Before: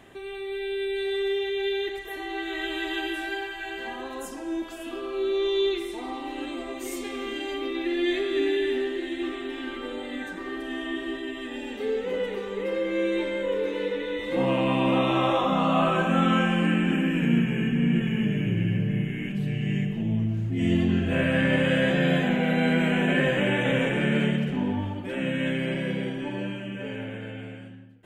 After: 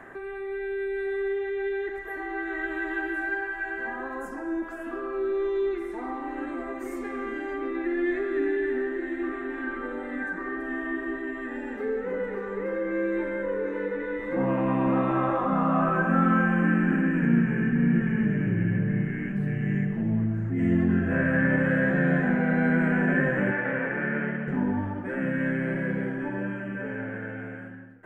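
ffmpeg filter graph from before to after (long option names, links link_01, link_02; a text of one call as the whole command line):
ffmpeg -i in.wav -filter_complex "[0:a]asettb=1/sr,asplit=3[link_01][link_02][link_03];[link_01]atrim=end=23.514[link_04];[link_02]atrim=start=23.51:end=24.48,asetpts=PTS-STARTPTS,afade=type=in:duration=0.004:curve=qsin,afade=type=out:start_time=0.966:duration=0.004:curve=qsin,lowpass=frequency=3100:width=0.5412,lowpass=frequency=3100:width=1.3066,lowshelf=frequency=290:gain=-11[link_05];[link_03]atrim=start=24.476[link_06];[link_04][link_05]acrossfade=duration=0.004:curve1=hsin:curve2=qsin[link_07];[link_07][link_06]acrossfade=duration=0.004:curve1=qsin:curve2=hsin,equalizer=frequency=74:width=0.41:gain=-9,acrossover=split=280[link_08][link_09];[link_09]acompressor=threshold=-54dB:ratio=1.5[link_10];[link_08][link_10]amix=inputs=2:normalize=0,highshelf=frequency=2300:width_type=q:width=3:gain=-12,volume=6.5dB" out.wav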